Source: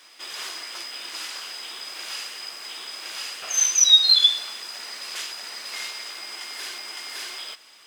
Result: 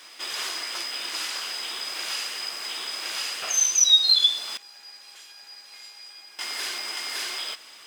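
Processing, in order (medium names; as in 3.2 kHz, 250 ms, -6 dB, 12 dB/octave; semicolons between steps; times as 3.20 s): dynamic bell 1.8 kHz, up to -4 dB, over -34 dBFS, Q 0.94; in parallel at +2 dB: compression, threshold -31 dBFS, peak gain reduction 19 dB; 4.57–6.39 s: on the sum: feedback comb 820 Hz, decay 0.38 s, mix 90%; trim -3 dB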